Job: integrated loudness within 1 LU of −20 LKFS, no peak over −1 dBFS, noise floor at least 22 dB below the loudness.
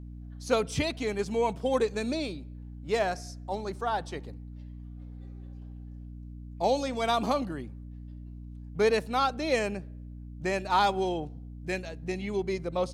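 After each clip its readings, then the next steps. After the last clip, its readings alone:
mains hum 60 Hz; hum harmonics up to 300 Hz; level of the hum −40 dBFS; integrated loudness −30.0 LKFS; sample peak −12.5 dBFS; target loudness −20.0 LKFS
→ mains-hum notches 60/120/180/240/300 Hz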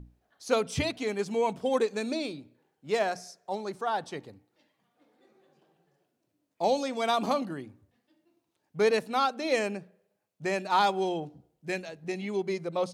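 mains hum none found; integrated loudness −30.0 LKFS; sample peak −12.5 dBFS; target loudness −20.0 LKFS
→ level +10 dB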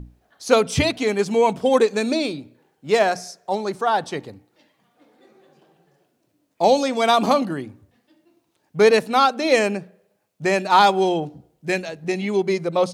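integrated loudness −20.0 LKFS; sample peak −2.5 dBFS; background noise floor −69 dBFS

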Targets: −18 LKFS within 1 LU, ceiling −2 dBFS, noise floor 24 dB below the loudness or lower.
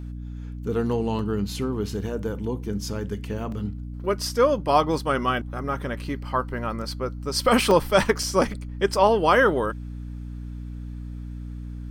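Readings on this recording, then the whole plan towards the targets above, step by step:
number of dropouts 4; longest dropout 2.6 ms; mains hum 60 Hz; hum harmonics up to 300 Hz; level of the hum −32 dBFS; integrated loudness −24.0 LKFS; sample peak −5.5 dBFS; target loudness −18.0 LKFS
→ repair the gap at 0:01.19/0:03.52/0:07.71/0:08.23, 2.6 ms
mains-hum notches 60/120/180/240/300 Hz
level +6 dB
brickwall limiter −2 dBFS

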